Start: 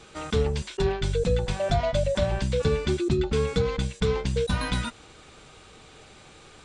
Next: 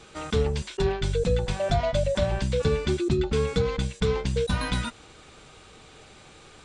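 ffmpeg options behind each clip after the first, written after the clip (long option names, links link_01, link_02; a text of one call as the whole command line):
ffmpeg -i in.wav -af anull out.wav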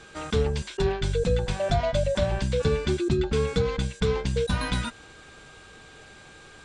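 ffmpeg -i in.wav -af "aeval=exprs='val(0)+0.00282*sin(2*PI*1600*n/s)':channel_layout=same" out.wav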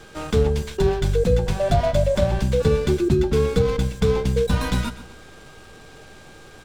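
ffmpeg -i in.wav -filter_complex "[0:a]acrossover=split=220|1000[link_01][link_02][link_03];[link_03]aeval=exprs='max(val(0),0)':channel_layout=same[link_04];[link_01][link_02][link_04]amix=inputs=3:normalize=0,aecho=1:1:127|254|381|508:0.168|0.0672|0.0269|0.0107,volume=5.5dB" out.wav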